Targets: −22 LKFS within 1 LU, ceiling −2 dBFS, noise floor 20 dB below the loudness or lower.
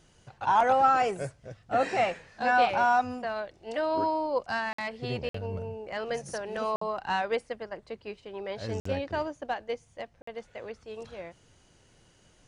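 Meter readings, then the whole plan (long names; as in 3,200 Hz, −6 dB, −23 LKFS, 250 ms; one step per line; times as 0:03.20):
number of dropouts 5; longest dropout 54 ms; integrated loudness −29.0 LKFS; sample peak −12.0 dBFS; target loudness −22.0 LKFS
→ repair the gap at 0:04.73/0:05.29/0:06.76/0:08.80/0:10.22, 54 ms
level +7 dB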